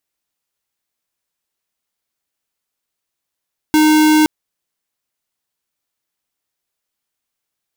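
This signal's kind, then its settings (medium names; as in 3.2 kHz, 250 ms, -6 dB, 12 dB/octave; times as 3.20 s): tone square 308 Hz -10.5 dBFS 0.52 s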